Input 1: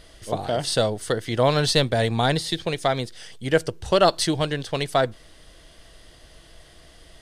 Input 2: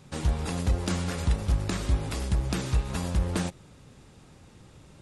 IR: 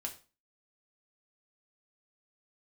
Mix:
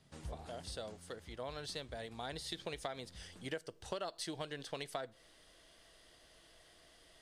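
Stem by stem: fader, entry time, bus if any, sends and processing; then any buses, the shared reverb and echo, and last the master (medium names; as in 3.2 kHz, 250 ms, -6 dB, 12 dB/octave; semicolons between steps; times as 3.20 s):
2.15 s -22.5 dB -> 2.60 s -12 dB, 0.00 s, send -14.5 dB, bass shelf 170 Hz -12 dB
-16.0 dB, 0.00 s, no send, auto duck -14 dB, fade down 1.00 s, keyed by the first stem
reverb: on, RT60 0.35 s, pre-delay 3 ms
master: compression 8:1, threshold -38 dBFS, peak gain reduction 14.5 dB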